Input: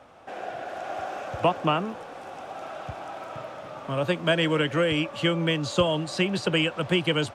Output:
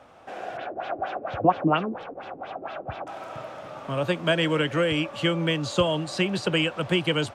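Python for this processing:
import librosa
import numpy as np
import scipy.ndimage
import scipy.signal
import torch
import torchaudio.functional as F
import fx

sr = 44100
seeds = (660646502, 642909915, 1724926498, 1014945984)

y = fx.filter_lfo_lowpass(x, sr, shape='sine', hz=4.3, low_hz=300.0, high_hz=4000.0, q=2.6, at=(0.57, 3.07))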